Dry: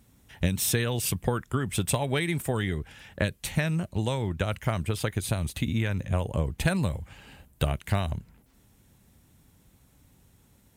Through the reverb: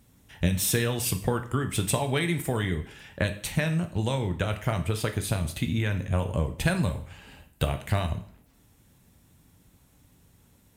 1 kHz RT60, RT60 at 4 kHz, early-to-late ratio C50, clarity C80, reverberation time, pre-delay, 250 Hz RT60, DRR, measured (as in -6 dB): 0.55 s, 0.50 s, 12.5 dB, 16.0 dB, 0.55 s, 4 ms, 0.55 s, 6.5 dB